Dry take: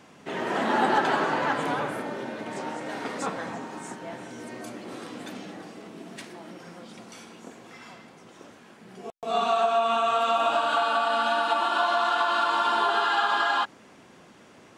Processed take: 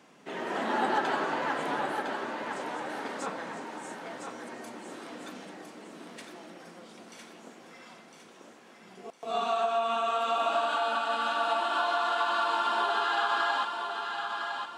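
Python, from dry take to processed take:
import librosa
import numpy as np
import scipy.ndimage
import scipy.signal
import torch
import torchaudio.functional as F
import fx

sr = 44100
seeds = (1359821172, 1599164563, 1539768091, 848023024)

p1 = scipy.signal.sosfilt(scipy.signal.butter(2, 180.0, 'highpass', fs=sr, output='sos'), x)
p2 = p1 + fx.echo_thinned(p1, sr, ms=1007, feedback_pct=40, hz=370.0, wet_db=-5.5, dry=0)
y = p2 * 10.0 ** (-5.0 / 20.0)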